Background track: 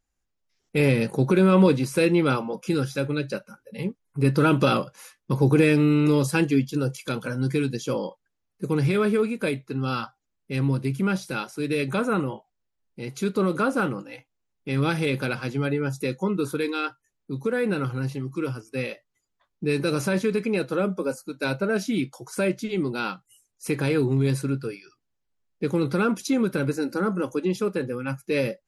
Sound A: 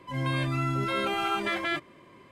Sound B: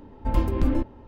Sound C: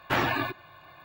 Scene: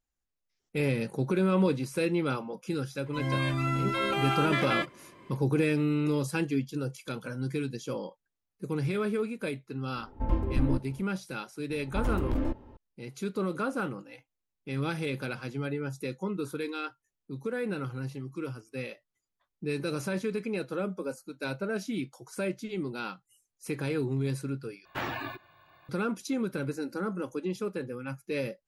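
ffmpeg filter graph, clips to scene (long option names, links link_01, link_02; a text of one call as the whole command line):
ffmpeg -i bed.wav -i cue0.wav -i cue1.wav -i cue2.wav -filter_complex "[2:a]asplit=2[link_01][link_02];[0:a]volume=-8dB[link_03];[link_01]lowpass=frequency=1500:poles=1[link_04];[link_02]asoftclip=type=hard:threshold=-19.5dB[link_05];[link_03]asplit=2[link_06][link_07];[link_06]atrim=end=24.854[link_08];[3:a]atrim=end=1.04,asetpts=PTS-STARTPTS,volume=-8.5dB[link_09];[link_07]atrim=start=25.886[link_10];[1:a]atrim=end=2.31,asetpts=PTS-STARTPTS,volume=-0.5dB,afade=type=in:duration=0.004:curve=hsin,afade=type=out:start_time=2.306:duration=0.004:curve=hsin,adelay=3060[link_11];[link_04]atrim=end=1.07,asetpts=PTS-STARTPTS,volume=-5dB,afade=type=in:duration=0.004:curve=hsin,afade=type=out:start_time=1.066:duration=0.004:curve=hsin,adelay=9950[link_12];[link_05]atrim=end=1.07,asetpts=PTS-STARTPTS,volume=-4.5dB,afade=type=in:duration=0.004:curve=hsin,afade=type=out:start_time=1.066:duration=0.004:curve=hsin,adelay=515970S[link_13];[link_08][link_09]acrossfade=duration=0.004:curve1=hsin:curve2=hsin[link_14];[link_14][link_10]acrossfade=duration=0.004:curve1=hsin:curve2=hsin[link_15];[link_15][link_11][link_12][link_13]amix=inputs=4:normalize=0" out.wav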